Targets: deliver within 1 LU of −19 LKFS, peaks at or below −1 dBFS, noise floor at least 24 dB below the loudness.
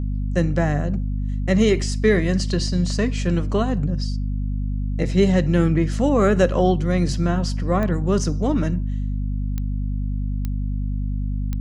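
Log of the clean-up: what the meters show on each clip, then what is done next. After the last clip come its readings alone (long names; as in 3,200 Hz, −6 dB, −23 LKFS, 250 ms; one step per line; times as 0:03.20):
number of clicks 4; mains hum 50 Hz; hum harmonics up to 250 Hz; level of the hum −21 dBFS; integrated loudness −22.0 LKFS; sample peak −5.0 dBFS; target loudness −19.0 LKFS
→ click removal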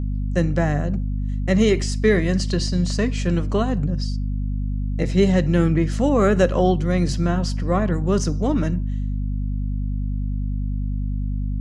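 number of clicks 0; mains hum 50 Hz; hum harmonics up to 250 Hz; level of the hum −21 dBFS
→ hum removal 50 Hz, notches 5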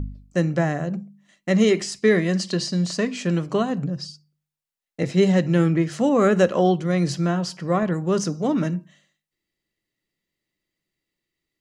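mains hum none found; integrated loudness −22.0 LKFS; sample peak −6.5 dBFS; target loudness −19.0 LKFS
→ level +3 dB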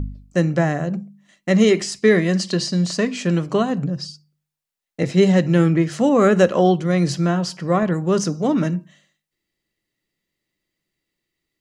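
integrated loudness −19.0 LKFS; sample peak −3.5 dBFS; background noise floor −84 dBFS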